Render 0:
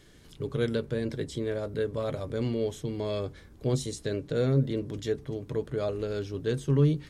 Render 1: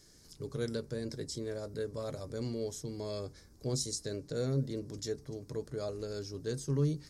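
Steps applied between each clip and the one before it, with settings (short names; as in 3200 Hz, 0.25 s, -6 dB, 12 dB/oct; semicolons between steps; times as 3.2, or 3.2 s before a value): resonant high shelf 4000 Hz +8 dB, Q 3; gain -7.5 dB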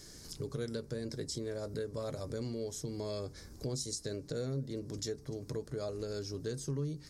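compressor 3:1, threshold -47 dBFS, peak gain reduction 16 dB; gain +8.5 dB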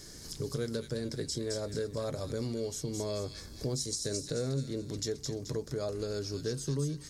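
thin delay 0.216 s, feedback 40%, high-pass 2400 Hz, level -3 dB; gain +3.5 dB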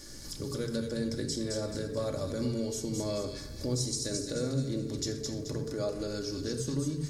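shoebox room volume 3700 m³, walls furnished, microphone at 2.4 m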